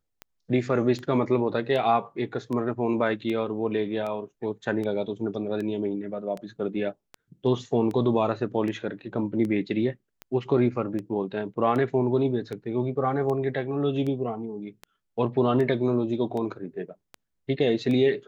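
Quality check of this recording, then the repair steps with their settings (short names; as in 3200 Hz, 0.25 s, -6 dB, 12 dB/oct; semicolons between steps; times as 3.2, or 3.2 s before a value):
tick 78 rpm -22 dBFS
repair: de-click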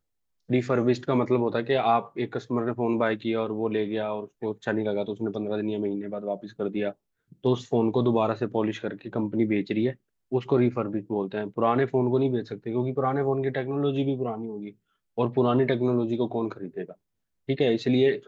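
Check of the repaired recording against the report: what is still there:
none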